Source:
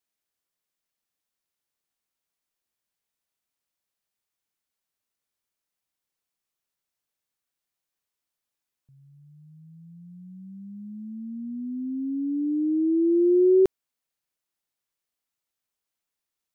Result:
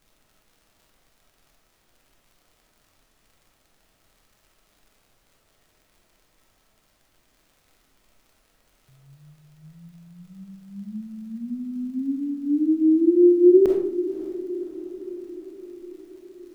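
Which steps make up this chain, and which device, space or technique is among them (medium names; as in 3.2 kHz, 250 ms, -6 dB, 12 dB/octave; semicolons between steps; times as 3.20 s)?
vinyl LP (wow and flutter; crackle; pink noise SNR 39 dB); hum notches 60/120/180 Hz; echo that smears into a reverb 561 ms, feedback 62%, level -14 dB; algorithmic reverb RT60 0.6 s, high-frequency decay 0.7×, pre-delay 5 ms, DRR -0.5 dB; trim +1 dB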